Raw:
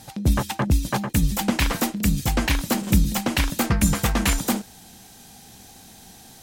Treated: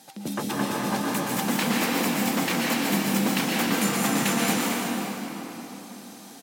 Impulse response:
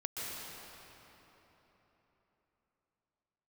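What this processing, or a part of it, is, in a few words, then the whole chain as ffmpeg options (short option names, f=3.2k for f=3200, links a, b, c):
cave: -filter_complex "[0:a]aecho=1:1:342:0.266[a];[1:a]atrim=start_sample=2205[b];[a][b]afir=irnorm=-1:irlink=0,highpass=f=200:w=0.5412,highpass=f=200:w=1.3066,volume=-2dB"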